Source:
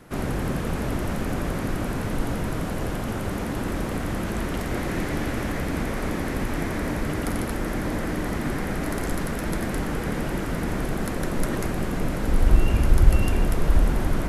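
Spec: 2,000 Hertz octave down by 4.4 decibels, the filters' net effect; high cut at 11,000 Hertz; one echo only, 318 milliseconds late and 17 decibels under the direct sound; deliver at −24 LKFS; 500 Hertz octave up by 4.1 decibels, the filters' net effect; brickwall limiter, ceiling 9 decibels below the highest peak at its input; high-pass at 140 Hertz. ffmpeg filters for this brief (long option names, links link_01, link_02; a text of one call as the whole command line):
ffmpeg -i in.wav -af "highpass=140,lowpass=11000,equalizer=frequency=500:width_type=o:gain=5.5,equalizer=frequency=2000:width_type=o:gain=-6,alimiter=limit=-22.5dB:level=0:latency=1,aecho=1:1:318:0.141,volume=7.5dB" out.wav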